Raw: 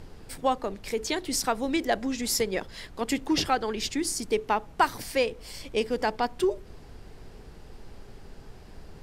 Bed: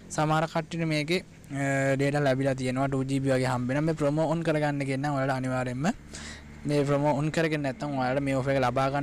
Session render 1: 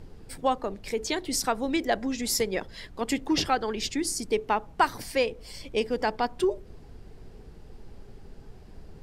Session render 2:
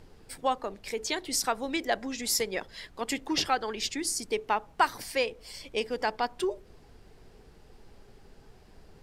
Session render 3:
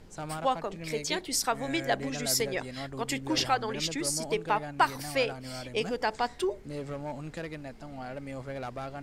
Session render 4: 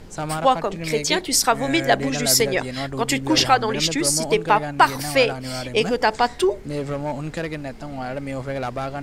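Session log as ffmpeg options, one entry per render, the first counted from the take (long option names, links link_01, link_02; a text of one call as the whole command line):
ffmpeg -i in.wav -af "afftdn=noise_reduction=6:noise_floor=-48" out.wav
ffmpeg -i in.wav -af "lowshelf=frequency=420:gain=-9" out.wav
ffmpeg -i in.wav -i bed.wav -filter_complex "[1:a]volume=-12.5dB[link_01];[0:a][link_01]amix=inputs=2:normalize=0" out.wav
ffmpeg -i in.wav -af "volume=10.5dB,alimiter=limit=-2dB:level=0:latency=1" out.wav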